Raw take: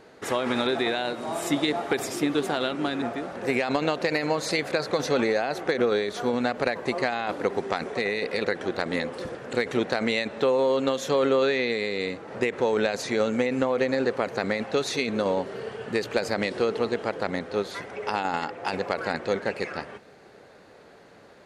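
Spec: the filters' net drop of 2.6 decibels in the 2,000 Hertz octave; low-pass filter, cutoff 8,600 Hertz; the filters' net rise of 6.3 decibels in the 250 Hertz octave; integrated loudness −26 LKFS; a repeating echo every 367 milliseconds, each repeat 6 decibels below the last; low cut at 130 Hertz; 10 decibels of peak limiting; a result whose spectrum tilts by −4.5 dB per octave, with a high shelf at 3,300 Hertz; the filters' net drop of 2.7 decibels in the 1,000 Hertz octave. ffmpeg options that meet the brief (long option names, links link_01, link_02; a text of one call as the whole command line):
ffmpeg -i in.wav -af "highpass=130,lowpass=8600,equalizer=frequency=250:width_type=o:gain=8,equalizer=frequency=1000:width_type=o:gain=-4,equalizer=frequency=2000:width_type=o:gain=-3.5,highshelf=frequency=3300:gain=4.5,alimiter=limit=-18dB:level=0:latency=1,aecho=1:1:367|734|1101|1468|1835|2202:0.501|0.251|0.125|0.0626|0.0313|0.0157,volume=1.5dB" out.wav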